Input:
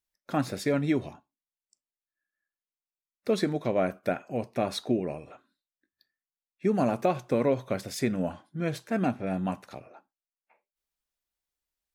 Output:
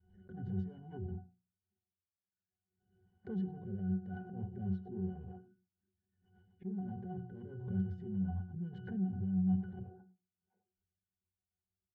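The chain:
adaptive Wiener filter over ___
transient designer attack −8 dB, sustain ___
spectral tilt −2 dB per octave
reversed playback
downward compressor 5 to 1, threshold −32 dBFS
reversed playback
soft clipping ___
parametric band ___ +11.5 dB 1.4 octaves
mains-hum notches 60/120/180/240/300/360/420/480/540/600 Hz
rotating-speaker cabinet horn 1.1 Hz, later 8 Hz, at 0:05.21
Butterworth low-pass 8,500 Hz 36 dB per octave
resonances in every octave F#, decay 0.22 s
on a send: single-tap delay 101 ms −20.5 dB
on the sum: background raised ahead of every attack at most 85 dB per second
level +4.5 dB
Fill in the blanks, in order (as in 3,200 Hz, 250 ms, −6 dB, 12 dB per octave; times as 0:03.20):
9 samples, +9 dB, −34 dBFS, 130 Hz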